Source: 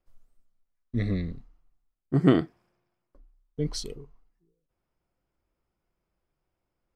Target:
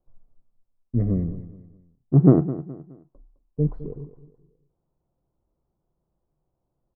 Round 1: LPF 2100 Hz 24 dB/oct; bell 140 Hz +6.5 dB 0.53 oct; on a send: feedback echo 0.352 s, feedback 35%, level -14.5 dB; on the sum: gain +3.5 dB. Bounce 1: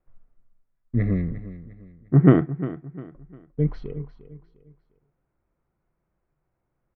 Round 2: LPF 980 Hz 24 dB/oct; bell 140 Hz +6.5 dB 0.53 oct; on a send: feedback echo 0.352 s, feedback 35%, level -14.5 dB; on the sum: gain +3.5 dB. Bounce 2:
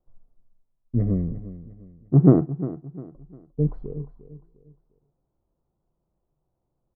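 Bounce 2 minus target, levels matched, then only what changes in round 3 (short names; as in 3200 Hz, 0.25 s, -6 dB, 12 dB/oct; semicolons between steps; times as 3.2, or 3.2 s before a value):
echo 0.142 s late
change: feedback echo 0.21 s, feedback 35%, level -14.5 dB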